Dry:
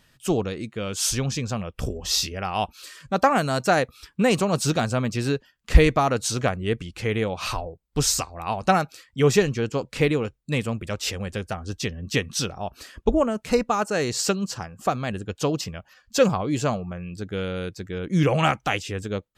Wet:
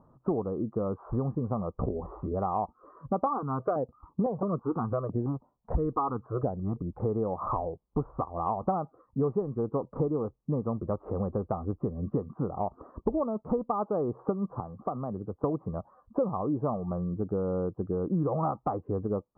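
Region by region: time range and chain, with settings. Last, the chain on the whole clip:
3.26–7.00 s: peaking EQ 1.5 kHz +4 dB 2.6 oct + stepped phaser 6 Hz 630–5800 Hz
14.60–15.44 s: compression 2:1, threshold -41 dBFS + three bands expanded up and down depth 40%
whole clip: Chebyshev low-pass 1.2 kHz, order 6; bass shelf 90 Hz -10 dB; compression 5:1, threshold -34 dBFS; trim +7 dB

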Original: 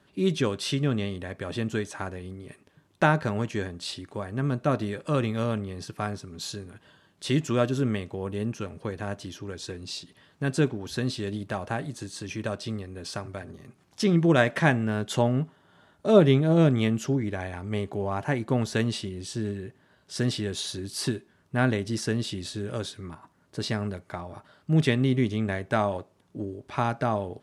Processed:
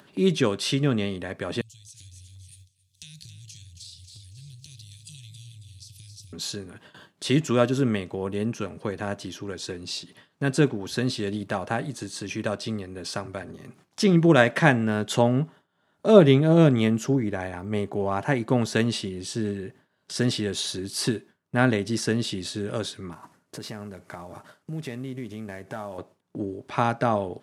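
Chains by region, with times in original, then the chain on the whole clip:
1.61–6.33 s: inverse Chebyshev band-stop 250–1400 Hz, stop band 60 dB + compression 10:1, threshold -48 dBFS + two-band feedback delay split 790 Hz, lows 203 ms, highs 273 ms, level -8 dB
16.81–17.95 s: peaking EQ 3.1 kHz -3.5 dB 1.2 oct + crackle 64 per s -53 dBFS + tape noise reduction on one side only decoder only
23.12–25.98 s: CVSD coder 64 kbps + peaking EQ 3.7 kHz -3.5 dB 0.76 oct + compression 2.5:1, threshold -40 dBFS
whole clip: gate with hold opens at -45 dBFS; upward compressor, threshold -39 dBFS; high-pass 120 Hz; trim +3.5 dB

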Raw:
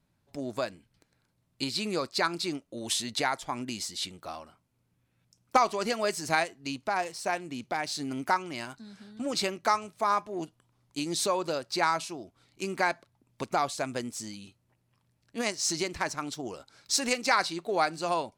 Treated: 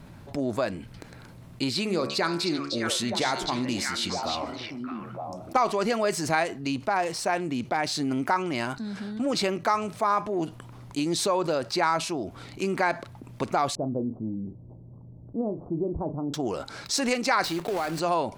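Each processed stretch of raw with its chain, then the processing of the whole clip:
1.79–5.56 s: de-hum 70.73 Hz, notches 36 + dynamic bell 1.1 kHz, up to -4 dB, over -38 dBFS, Q 0.73 + repeats whose band climbs or falls 306 ms, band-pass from 4.6 kHz, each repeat -1.4 oct, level -2 dB
13.75–16.34 s: Gaussian low-pass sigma 14 samples + doubling 36 ms -13.5 dB
17.44–18.00 s: block-companded coder 3-bit + compression, threshold -32 dBFS
whole clip: treble shelf 2.9 kHz -9 dB; level flattener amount 50%

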